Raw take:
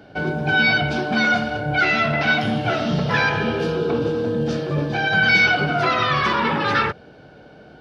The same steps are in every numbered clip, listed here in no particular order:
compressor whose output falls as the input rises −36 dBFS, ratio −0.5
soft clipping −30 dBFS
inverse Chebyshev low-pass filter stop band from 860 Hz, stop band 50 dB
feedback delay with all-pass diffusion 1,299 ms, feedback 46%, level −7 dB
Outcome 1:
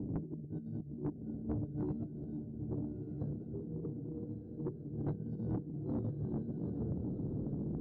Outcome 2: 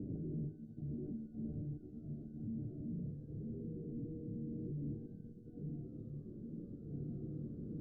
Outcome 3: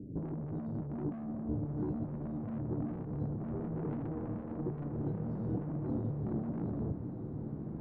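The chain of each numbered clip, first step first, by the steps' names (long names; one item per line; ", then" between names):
inverse Chebyshev low-pass filter, then compressor whose output falls as the input rises, then feedback delay with all-pass diffusion, then soft clipping
feedback delay with all-pass diffusion, then soft clipping, then compressor whose output falls as the input rises, then inverse Chebyshev low-pass filter
inverse Chebyshev low-pass filter, then soft clipping, then compressor whose output falls as the input rises, then feedback delay with all-pass diffusion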